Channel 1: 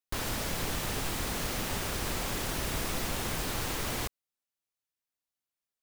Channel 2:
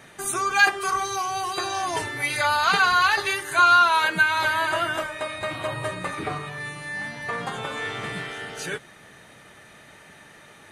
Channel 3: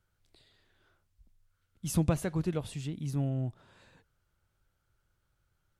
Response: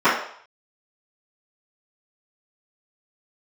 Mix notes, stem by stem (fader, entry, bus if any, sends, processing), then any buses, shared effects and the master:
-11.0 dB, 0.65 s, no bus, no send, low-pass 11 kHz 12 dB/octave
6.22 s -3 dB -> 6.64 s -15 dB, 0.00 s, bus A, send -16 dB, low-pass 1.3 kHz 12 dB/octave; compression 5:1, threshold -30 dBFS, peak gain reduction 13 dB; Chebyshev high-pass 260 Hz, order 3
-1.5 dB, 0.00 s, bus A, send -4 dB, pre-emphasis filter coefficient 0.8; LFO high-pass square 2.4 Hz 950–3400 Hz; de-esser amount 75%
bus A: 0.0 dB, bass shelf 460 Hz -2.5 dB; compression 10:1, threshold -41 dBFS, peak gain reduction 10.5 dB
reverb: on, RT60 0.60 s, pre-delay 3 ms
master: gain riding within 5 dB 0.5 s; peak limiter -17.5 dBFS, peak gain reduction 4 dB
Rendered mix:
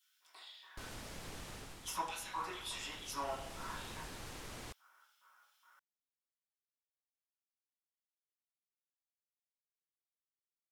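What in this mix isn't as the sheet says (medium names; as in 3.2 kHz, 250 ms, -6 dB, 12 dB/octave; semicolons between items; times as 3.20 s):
stem 1 -11.0 dB -> -19.5 dB; stem 2: muted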